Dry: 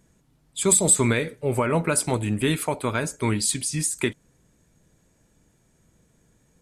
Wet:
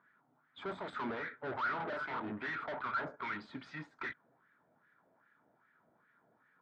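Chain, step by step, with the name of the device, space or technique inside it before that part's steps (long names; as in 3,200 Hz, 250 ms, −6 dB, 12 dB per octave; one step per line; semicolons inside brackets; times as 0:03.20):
0:01.77–0:02.32: double-tracking delay 31 ms −2.5 dB
wah-wah guitar rig (LFO wah 2.5 Hz 630–1,800 Hz, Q 3.1; tube saturation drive 45 dB, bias 0.5; loudspeaker in its box 95–3,400 Hz, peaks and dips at 130 Hz +3 dB, 250 Hz +5 dB, 510 Hz −5 dB, 1,400 Hz +8 dB, 2,700 Hz −8 dB)
level +8 dB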